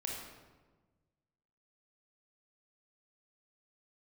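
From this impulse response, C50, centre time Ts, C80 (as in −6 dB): 1.0 dB, 67 ms, 3.5 dB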